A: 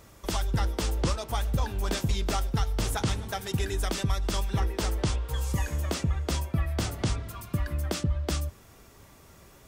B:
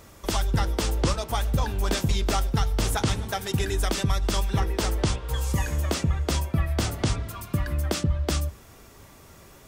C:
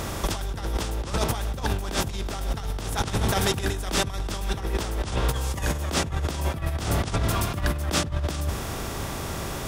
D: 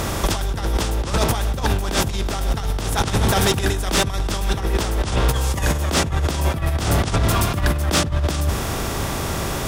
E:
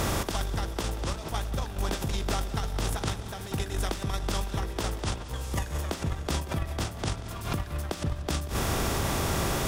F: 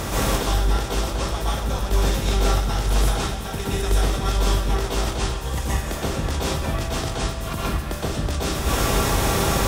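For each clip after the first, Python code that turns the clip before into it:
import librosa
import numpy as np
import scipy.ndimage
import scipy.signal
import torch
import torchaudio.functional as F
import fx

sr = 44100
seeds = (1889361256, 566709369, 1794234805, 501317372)

y1 = fx.hum_notches(x, sr, base_hz=60, count=3)
y1 = y1 * librosa.db_to_amplitude(4.0)
y2 = fx.bin_compress(y1, sr, power=0.6)
y2 = fx.over_compress(y2, sr, threshold_db=-25.0, ratio=-0.5)
y3 = fx.fold_sine(y2, sr, drive_db=5, ceiling_db=-9.0)
y3 = y3 * librosa.db_to_amplitude(-1.5)
y4 = fx.over_compress(y3, sr, threshold_db=-23.0, ratio=-0.5)
y4 = fx.echo_feedback(y4, sr, ms=185, feedback_pct=60, wet_db=-16)
y4 = y4 * librosa.db_to_amplitude(-7.0)
y5 = fx.rev_plate(y4, sr, seeds[0], rt60_s=0.6, hf_ratio=0.95, predelay_ms=110, drr_db=-7.0)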